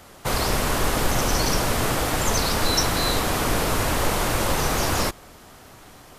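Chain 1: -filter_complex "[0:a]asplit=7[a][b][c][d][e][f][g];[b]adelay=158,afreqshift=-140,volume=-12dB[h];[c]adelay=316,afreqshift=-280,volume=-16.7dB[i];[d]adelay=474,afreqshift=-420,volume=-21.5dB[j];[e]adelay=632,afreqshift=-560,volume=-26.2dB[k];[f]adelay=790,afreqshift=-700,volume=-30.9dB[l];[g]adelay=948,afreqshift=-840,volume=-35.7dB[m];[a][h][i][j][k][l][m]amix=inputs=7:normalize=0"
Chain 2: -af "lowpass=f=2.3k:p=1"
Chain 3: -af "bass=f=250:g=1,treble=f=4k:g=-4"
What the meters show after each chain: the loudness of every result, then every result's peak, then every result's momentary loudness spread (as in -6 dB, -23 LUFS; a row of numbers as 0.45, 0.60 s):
-22.0, -25.0, -23.5 LUFS; -8.0, -9.5, -8.0 dBFS; 6, 1, 2 LU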